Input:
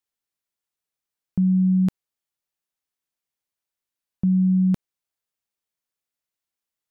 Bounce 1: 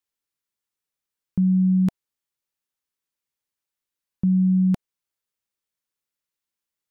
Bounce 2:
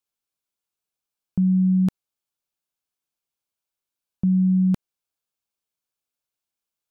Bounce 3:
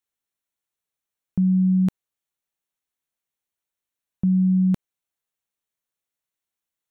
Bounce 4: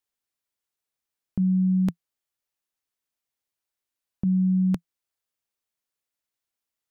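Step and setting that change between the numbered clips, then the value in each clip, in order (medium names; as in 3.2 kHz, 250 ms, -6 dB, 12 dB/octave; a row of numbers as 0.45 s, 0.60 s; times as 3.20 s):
band-stop, frequency: 700 Hz, 1.9 kHz, 4.9 kHz, 170 Hz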